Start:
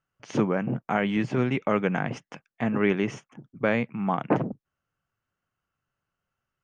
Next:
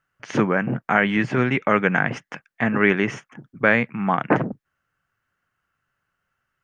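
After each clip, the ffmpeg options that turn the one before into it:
-af "equalizer=f=1700:t=o:w=0.95:g=9.5,volume=1.5"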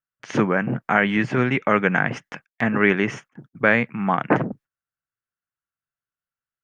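-af "agate=range=0.0891:threshold=0.00631:ratio=16:detection=peak"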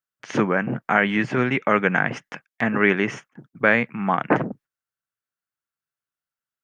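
-af "lowshelf=f=90:g=-9"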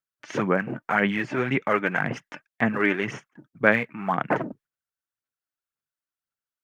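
-af "aphaser=in_gain=1:out_gain=1:delay=3.4:decay=0.48:speed=1.9:type=sinusoidal,volume=0.562"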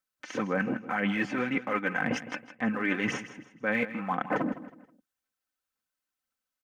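-af "aecho=1:1:3.9:0.58,areverse,acompressor=threshold=0.0355:ratio=6,areverse,aecho=1:1:160|320|480:0.2|0.0678|0.0231,volume=1.41"

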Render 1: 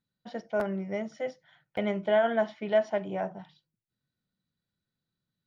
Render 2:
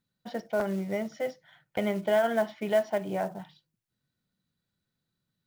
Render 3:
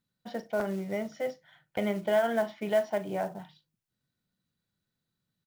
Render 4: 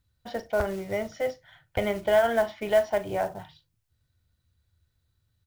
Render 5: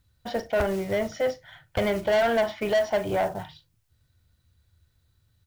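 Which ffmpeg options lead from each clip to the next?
-filter_complex "[0:a]asplit=2[s0][s1];[s1]acompressor=threshold=0.0282:ratio=12,volume=0.891[s2];[s0][s2]amix=inputs=2:normalize=0,acrusher=bits=6:mode=log:mix=0:aa=0.000001,volume=0.75"
-filter_complex "[0:a]asplit=2[s0][s1];[s1]adelay=39,volume=0.2[s2];[s0][s2]amix=inputs=2:normalize=0,volume=0.841"
-af "lowshelf=f=120:t=q:w=3:g=14,volume=1.78"
-af "asoftclip=type=tanh:threshold=0.0596,volume=2"

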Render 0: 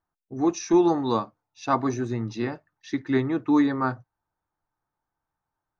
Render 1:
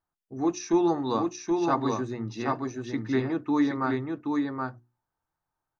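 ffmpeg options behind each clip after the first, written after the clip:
-af "bandreject=f=60:t=h:w=6,bandreject=f=120:t=h:w=6,bandreject=f=180:t=h:w=6,bandreject=f=240:t=h:w=6,bandreject=f=300:t=h:w=6,bandreject=f=360:t=h:w=6,aecho=1:1:775:0.668,volume=0.708"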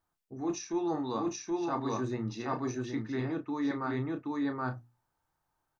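-filter_complex "[0:a]areverse,acompressor=threshold=0.0178:ratio=6,areverse,asplit=2[s0][s1];[s1]adelay=32,volume=0.355[s2];[s0][s2]amix=inputs=2:normalize=0,volume=1.58"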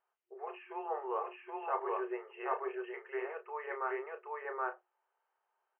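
-af "afftfilt=real='re*between(b*sr/4096,360,3200)':imag='im*between(b*sr/4096,360,3200)':win_size=4096:overlap=0.75"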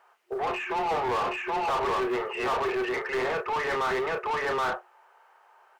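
-filter_complex "[0:a]acrusher=bits=8:mode=log:mix=0:aa=0.000001,asplit=2[s0][s1];[s1]highpass=f=720:p=1,volume=35.5,asoftclip=type=tanh:threshold=0.075[s2];[s0][s2]amix=inputs=2:normalize=0,lowpass=f=2100:p=1,volume=0.501,volume=1.33"

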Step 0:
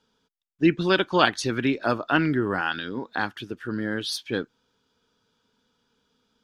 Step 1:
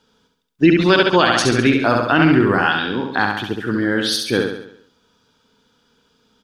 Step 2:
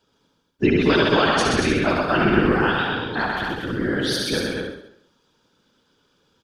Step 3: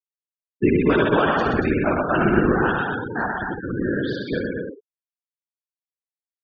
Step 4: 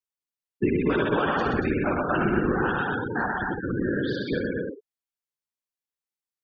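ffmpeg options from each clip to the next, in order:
-filter_complex "[0:a]asplit=2[s0][s1];[s1]aecho=0:1:68|136|204|272|340|408|476:0.596|0.304|0.155|0.079|0.0403|0.0206|0.0105[s2];[s0][s2]amix=inputs=2:normalize=0,alimiter=level_in=3.16:limit=0.891:release=50:level=0:latency=1,volume=0.841"
-af "afftfilt=real='hypot(re,im)*cos(2*PI*random(0))':imag='hypot(re,im)*sin(2*PI*random(1))':win_size=512:overlap=0.75,aecho=1:1:125.4|233.2:0.631|0.562"
-af "afftfilt=real='re*gte(hypot(re,im),0.0794)':imag='im*gte(hypot(re,im),0.0794)':win_size=1024:overlap=0.75,lowpass=2100"
-af "bandreject=f=650:w=12,acompressor=threshold=0.0631:ratio=2"

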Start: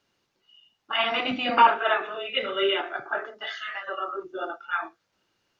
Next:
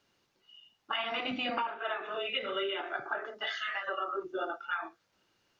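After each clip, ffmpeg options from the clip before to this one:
-af "acompressor=threshold=0.0316:ratio=20"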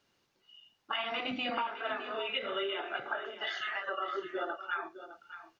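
-af "aecho=1:1:610:0.237,volume=0.891"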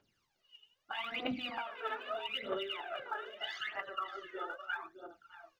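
-af "aphaser=in_gain=1:out_gain=1:delay=2.4:decay=0.76:speed=0.79:type=triangular,volume=0.422"

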